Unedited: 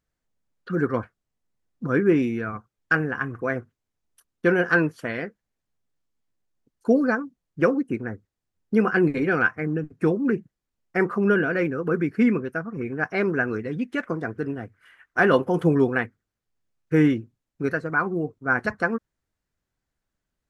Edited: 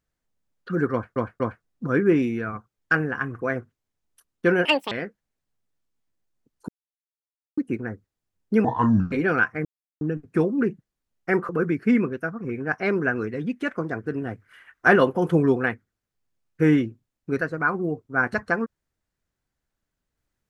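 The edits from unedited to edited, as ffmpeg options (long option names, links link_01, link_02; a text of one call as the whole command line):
ffmpeg -i in.wav -filter_complex "[0:a]asplit=14[link_01][link_02][link_03][link_04][link_05][link_06][link_07][link_08][link_09][link_10][link_11][link_12][link_13][link_14];[link_01]atrim=end=1.162[link_15];[link_02]atrim=start=0.918:end=1.162[link_16];[link_03]atrim=start=0.918:end=1.162[link_17];[link_04]atrim=start=1.638:end=4.654[link_18];[link_05]atrim=start=4.65:end=5.12,asetpts=PTS-STARTPTS,asetrate=78498,aresample=44100,atrim=end_sample=11644,asetpts=PTS-STARTPTS[link_19];[link_06]atrim=start=5.116:end=6.89,asetpts=PTS-STARTPTS,afade=type=out:start_time=1.77:duration=0.004:curve=hsin[link_20];[link_07]atrim=start=6.89:end=7.78,asetpts=PTS-STARTPTS,volume=0[link_21];[link_08]atrim=start=7.78:end=8.854,asetpts=PTS-STARTPTS,afade=type=in:duration=0.004:curve=hsin[link_22];[link_09]atrim=start=8.85:end=9.15,asetpts=PTS-STARTPTS,asetrate=27783,aresample=44100[link_23];[link_10]atrim=start=9.146:end=9.68,asetpts=PTS-STARTPTS,afade=type=out:start_time=0.53:duration=0.004:curve=hsin,apad=pad_dur=0.36[link_24];[link_11]atrim=start=9.68:end=11.162,asetpts=PTS-STARTPTS,afade=type=in:duration=0.004:curve=hsin[link_25];[link_12]atrim=start=11.808:end=14.542[link_26];[link_13]atrim=start=14.538:end=15.282,asetpts=PTS-STARTPTS,volume=3dB[link_27];[link_14]atrim=start=15.278[link_28];[link_15][link_16]acrossfade=duration=0.004:curve1=hsin:curve2=hsin[link_29];[link_29][link_17]acrossfade=duration=0.004:curve1=hsin:curve2=hsin[link_30];[link_30][link_18]acrossfade=duration=0.004:curve1=hsin:curve2=hsin[link_31];[link_31][link_19]acrossfade=duration=0.004:curve1=hsin:curve2=hsin[link_32];[link_20][link_21][link_22]concat=n=3:v=0:a=1[link_33];[link_32][link_33]acrossfade=duration=0.004:curve1=hsin:curve2=hsin[link_34];[link_34][link_23]acrossfade=duration=0.004:curve1=hsin:curve2=hsin[link_35];[link_24][link_25]concat=n=2:v=0:a=1[link_36];[link_35][link_36]acrossfade=duration=0.004:curve1=hsin:curve2=hsin[link_37];[link_37][link_26]acrossfade=duration=0.004:curve1=hsin:curve2=hsin[link_38];[link_38][link_27]acrossfade=duration=0.004:curve1=hsin:curve2=hsin[link_39];[link_39][link_28]acrossfade=duration=0.004:curve1=hsin:curve2=hsin" out.wav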